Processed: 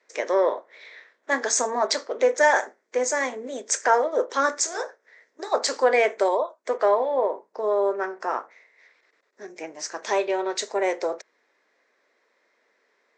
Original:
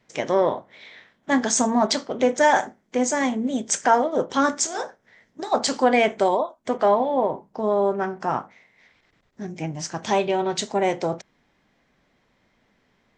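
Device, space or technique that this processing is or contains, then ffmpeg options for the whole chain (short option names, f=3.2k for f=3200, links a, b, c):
phone speaker on a table: -af "highpass=f=390:w=0.5412,highpass=f=390:w=1.3066,equalizer=f=460:t=q:w=4:g=3,equalizer=f=780:t=q:w=4:g=-6,equalizer=f=1.8k:t=q:w=4:g=3,equalizer=f=3.1k:t=q:w=4:g=-9,lowpass=f=8.4k:w=0.5412,lowpass=f=8.4k:w=1.3066"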